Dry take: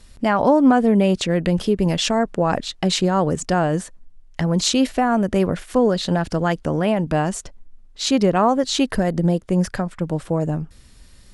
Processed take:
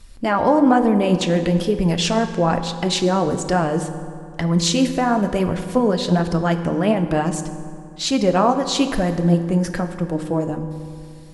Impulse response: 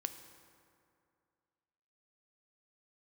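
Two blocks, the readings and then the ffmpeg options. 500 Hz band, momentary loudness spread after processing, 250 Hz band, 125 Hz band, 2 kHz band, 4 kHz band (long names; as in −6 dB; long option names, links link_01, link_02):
0.0 dB, 11 LU, +0.5 dB, +1.0 dB, 0.0 dB, 0.0 dB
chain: -filter_complex "[0:a]flanger=delay=0.8:depth=9.2:regen=54:speed=1.1:shape=sinusoidal[link_01];[1:a]atrim=start_sample=2205[link_02];[link_01][link_02]afir=irnorm=-1:irlink=0,volume=5.5dB"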